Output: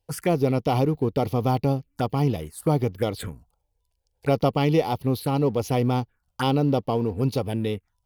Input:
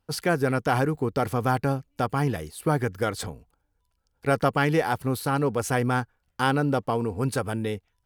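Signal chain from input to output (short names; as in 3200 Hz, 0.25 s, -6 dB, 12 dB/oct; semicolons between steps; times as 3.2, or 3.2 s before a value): envelope phaser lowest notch 220 Hz, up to 1600 Hz, full sweep at -23.5 dBFS; in parallel at -6 dB: crossover distortion -43.5 dBFS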